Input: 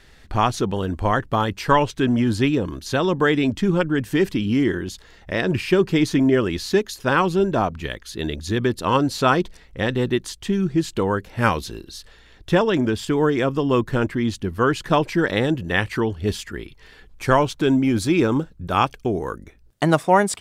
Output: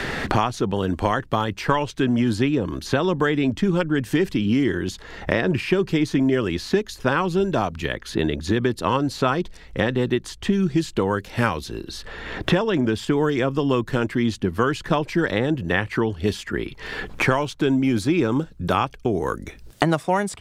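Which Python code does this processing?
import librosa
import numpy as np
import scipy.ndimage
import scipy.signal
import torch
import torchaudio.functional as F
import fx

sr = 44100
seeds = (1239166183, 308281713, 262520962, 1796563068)

y = fx.high_shelf(x, sr, hz=8900.0, db=-5.0)
y = fx.band_squash(y, sr, depth_pct=100)
y = F.gain(torch.from_numpy(y), -2.0).numpy()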